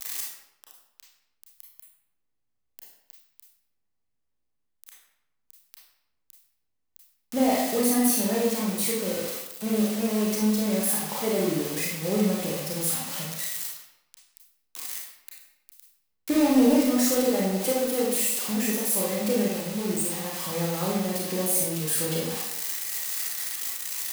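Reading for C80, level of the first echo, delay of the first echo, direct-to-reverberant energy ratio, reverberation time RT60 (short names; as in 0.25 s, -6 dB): 4.5 dB, none, none, -4.0 dB, 0.90 s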